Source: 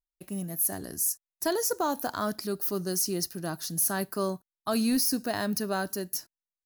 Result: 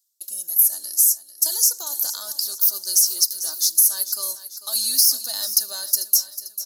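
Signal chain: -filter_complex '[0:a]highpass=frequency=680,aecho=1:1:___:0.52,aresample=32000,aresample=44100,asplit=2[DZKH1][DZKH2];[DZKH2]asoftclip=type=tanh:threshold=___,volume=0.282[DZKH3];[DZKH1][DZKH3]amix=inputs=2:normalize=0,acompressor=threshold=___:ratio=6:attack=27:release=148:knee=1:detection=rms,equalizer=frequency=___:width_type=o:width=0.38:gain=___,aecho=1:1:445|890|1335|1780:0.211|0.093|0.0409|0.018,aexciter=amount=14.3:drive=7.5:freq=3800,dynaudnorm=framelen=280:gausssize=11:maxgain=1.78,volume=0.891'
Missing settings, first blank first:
3.4, 0.0631, 0.0398, 10000, -6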